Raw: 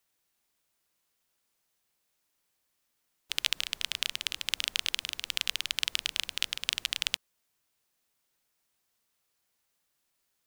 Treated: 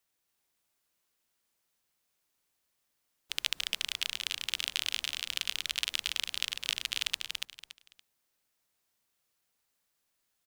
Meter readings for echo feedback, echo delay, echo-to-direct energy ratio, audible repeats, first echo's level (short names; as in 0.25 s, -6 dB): 25%, 0.284 s, -3.5 dB, 3, -4.0 dB